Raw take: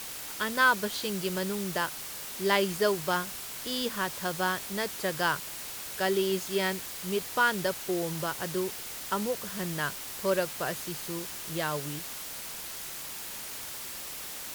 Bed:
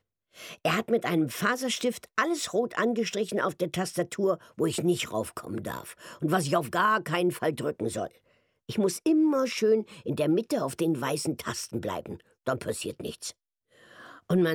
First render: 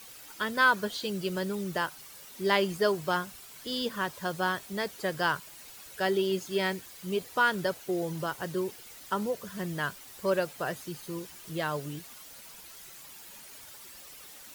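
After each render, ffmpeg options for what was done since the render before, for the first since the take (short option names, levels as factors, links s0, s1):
-af "afftdn=nr=11:nf=-40"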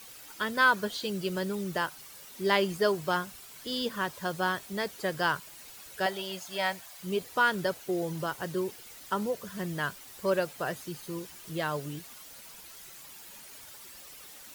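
-filter_complex "[0:a]asettb=1/sr,asplit=3[s0][s1][s2];[s0]atrim=end=6.064[s3];[s1]atrim=start=6.06:end=7,asetpts=PTS-STARTPTS,afade=t=in:d=0.004:c=qsin,afade=t=out:st=0.936:d=0.004:c=qsin,lowshelf=f=520:t=q:w=3:g=-7.5[s4];[s2]atrim=start=6.996[s5];[s3][s4]acrossfade=d=0.004:c1=hsin:c2=qsin[s6];[s6][s5]acrossfade=d=0.004:c1=qsin:c2=hsin"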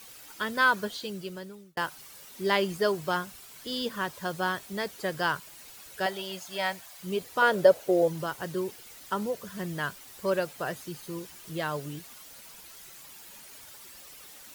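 -filter_complex "[0:a]asettb=1/sr,asplit=3[s0][s1][s2];[s0]atrim=end=7.424[s3];[s1]atrim=start=7.42:end=8.08,asetpts=PTS-STARTPTS,afade=t=in:d=0.004:c=qsin,afade=t=out:st=0.656:d=0.004:c=qsin,equalizer=f=560:t=o:w=0.86:g=14[s4];[s2]atrim=start=8.076[s5];[s3][s4]acrossfade=d=0.004:c1=hsin:c2=qsin[s6];[s6][s5]acrossfade=d=0.004:c1=qsin:c2=hsin,asplit=2[s7][s8];[s7]atrim=end=1.77,asetpts=PTS-STARTPTS,afade=t=out:st=0.78:d=0.99[s9];[s8]atrim=start=1.77,asetpts=PTS-STARTPTS,afade=t=in:d=0.004:c=hsin[s10];[s9][s10]concat=n=2:v=0:a=1"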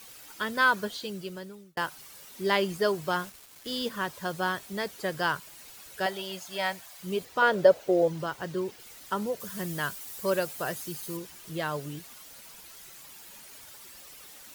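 -filter_complex "[0:a]asettb=1/sr,asplit=3[s0][s1][s2];[s0]atrim=end=3.194[s3];[s1]atrim=start=3.19:end=3.89,asetpts=PTS-STARTPTS,afade=t=in:d=0.004:c=qsin,afade=t=out:st=0.696:d=0.004:c=qsin,acrusher=bits=6:mix=0:aa=0.5[s4];[s2]atrim=start=3.886[s5];[s3][s4]acrossfade=d=0.004:c1=hsin:c2=qsin[s6];[s6][s5]acrossfade=d=0.004:c1=qsin:c2=hsin,asettb=1/sr,asplit=3[s7][s8][s9];[s7]atrim=end=7.254[s10];[s8]atrim=start=7.25:end=8.8,asetpts=PTS-STARTPTS,afade=t=in:d=0.004:c=qsin,afade=t=out:st=1.546:d=0.004:c=qsin,equalizer=f=12000:w=0.74:g=-8.5[s11];[s9]atrim=start=8.796[s12];[s10][s11]acrossfade=d=0.004:c1=hsin:c2=qsin[s13];[s13][s12]acrossfade=d=0.004:c1=qsin:c2=hsin,asettb=1/sr,asplit=3[s14][s15][s16];[s14]atrim=end=9.404[s17];[s15]atrim=start=9.4:end=11.17,asetpts=PTS-STARTPTS,afade=t=in:d=0.004:c=qsin,afade=t=out:st=1.766:d=0.004:c=qsin,highshelf=f=6100:g=9[s18];[s16]atrim=start=11.166[s19];[s17][s18]acrossfade=d=0.004:c1=hsin:c2=qsin[s20];[s20][s19]acrossfade=d=0.004:c1=qsin:c2=hsin"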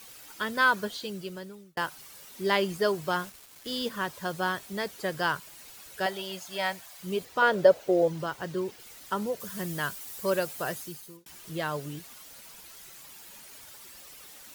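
-filter_complex "[0:a]asplit=2[s0][s1];[s0]atrim=end=11.26,asetpts=PTS-STARTPTS,afade=t=out:st=10.72:d=0.54[s2];[s1]atrim=start=11.26,asetpts=PTS-STARTPTS,afade=t=in:d=0.004:c=hsin[s3];[s2][s3]concat=n=2:v=0:a=1"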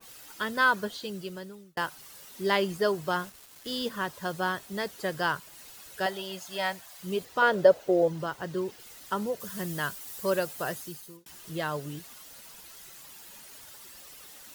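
-af "bandreject=f=2300:w=20,adynamicequalizer=threshold=0.01:dfrequency=1900:dqfactor=0.7:tfrequency=1900:tqfactor=0.7:attack=5:release=100:ratio=0.375:range=1.5:mode=cutabove:tftype=highshelf"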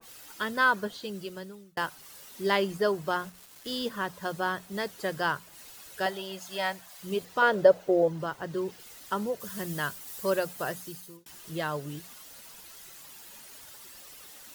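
-af "bandreject=f=60:t=h:w=6,bandreject=f=120:t=h:w=6,bandreject=f=180:t=h:w=6,adynamicequalizer=threshold=0.00794:dfrequency=2200:dqfactor=0.7:tfrequency=2200:tqfactor=0.7:attack=5:release=100:ratio=0.375:range=2.5:mode=cutabove:tftype=highshelf"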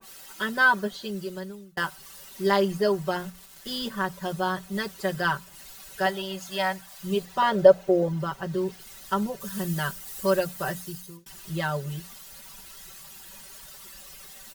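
-af "aecho=1:1:5.2:0.97,asubboost=boost=2.5:cutoff=160"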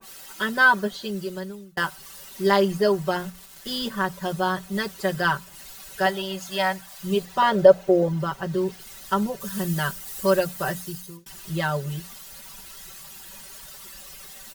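-af "volume=1.41,alimiter=limit=0.708:level=0:latency=1"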